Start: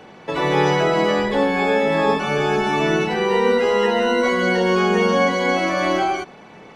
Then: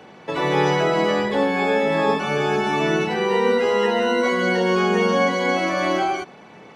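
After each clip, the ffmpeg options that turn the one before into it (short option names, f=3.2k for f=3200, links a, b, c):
-af "highpass=74,volume=-1.5dB"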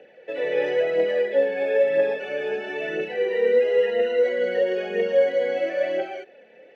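-filter_complex "[0:a]asplit=3[a][b][c];[a]bandpass=f=530:t=q:w=8,volume=0dB[d];[b]bandpass=f=1.84k:t=q:w=8,volume=-6dB[e];[c]bandpass=f=2.48k:t=q:w=8,volume=-9dB[f];[d][e][f]amix=inputs=3:normalize=0,aphaser=in_gain=1:out_gain=1:delay=4.8:decay=0.43:speed=1:type=triangular,volume=4dB"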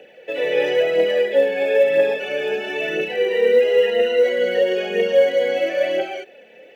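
-af "aexciter=amount=2.1:drive=4.3:freq=2.5k,volume=4dB"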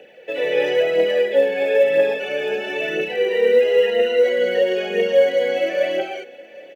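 -af "aecho=1:1:769:0.0794"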